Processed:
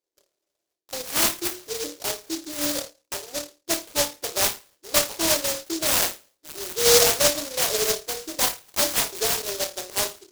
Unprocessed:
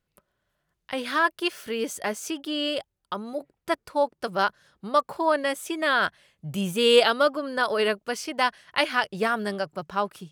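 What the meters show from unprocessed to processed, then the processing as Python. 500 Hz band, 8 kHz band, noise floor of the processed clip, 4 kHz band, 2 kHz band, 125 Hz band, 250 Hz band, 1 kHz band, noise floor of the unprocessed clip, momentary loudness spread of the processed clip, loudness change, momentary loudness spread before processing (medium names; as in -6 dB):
-2.0 dB, +18.0 dB, -82 dBFS, +4.0 dB, -4.0 dB, -1.5 dB, -4.0 dB, -6.5 dB, -80 dBFS, 13 LU, +3.0 dB, 11 LU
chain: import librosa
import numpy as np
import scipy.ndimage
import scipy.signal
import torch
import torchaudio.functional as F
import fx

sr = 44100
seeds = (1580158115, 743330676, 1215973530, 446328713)

p1 = fx.rattle_buzz(x, sr, strikes_db=-35.0, level_db=-23.0)
p2 = p1 + fx.room_flutter(p1, sr, wall_m=4.7, rt60_s=0.28, dry=0)
p3 = fx.env_lowpass(p2, sr, base_hz=920.0, full_db=-17.5)
p4 = fx.brickwall_bandpass(p3, sr, low_hz=280.0, high_hz=5200.0)
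p5 = fx.hum_notches(p4, sr, base_hz=60, count=9)
y = fx.noise_mod_delay(p5, sr, seeds[0], noise_hz=5200.0, depth_ms=0.27)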